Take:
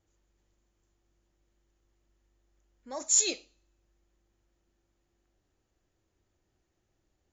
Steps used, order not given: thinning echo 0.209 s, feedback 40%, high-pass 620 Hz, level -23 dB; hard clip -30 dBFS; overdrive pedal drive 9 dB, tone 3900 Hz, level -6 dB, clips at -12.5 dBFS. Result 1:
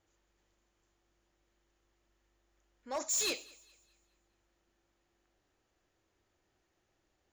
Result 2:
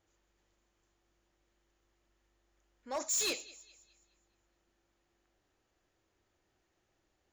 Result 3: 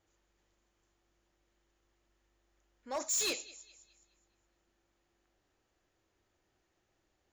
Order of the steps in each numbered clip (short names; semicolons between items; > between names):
overdrive pedal > hard clip > thinning echo; overdrive pedal > thinning echo > hard clip; thinning echo > overdrive pedal > hard clip